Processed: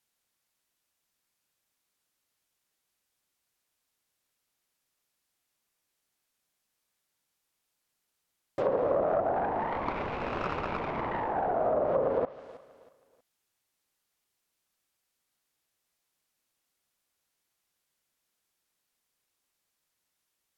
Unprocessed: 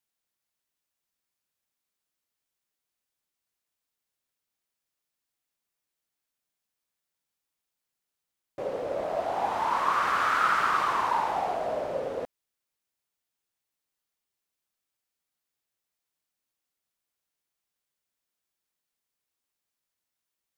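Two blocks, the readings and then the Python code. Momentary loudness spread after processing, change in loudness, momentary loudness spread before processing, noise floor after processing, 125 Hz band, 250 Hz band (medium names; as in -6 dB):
7 LU, -3.0 dB, 12 LU, -82 dBFS, +7.5 dB, +5.5 dB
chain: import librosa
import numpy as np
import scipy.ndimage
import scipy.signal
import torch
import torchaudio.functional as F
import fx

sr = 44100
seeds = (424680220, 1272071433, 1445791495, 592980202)

p1 = fx.self_delay(x, sr, depth_ms=0.63)
p2 = p1 + fx.echo_feedback(p1, sr, ms=319, feedback_pct=33, wet_db=-20.5, dry=0)
p3 = fx.env_lowpass_down(p2, sr, base_hz=730.0, full_db=-26.5)
p4 = fx.dynamic_eq(p3, sr, hz=1900.0, q=0.79, threshold_db=-49.0, ratio=4.0, max_db=-3)
y = F.gain(torch.from_numpy(p4), 6.0).numpy()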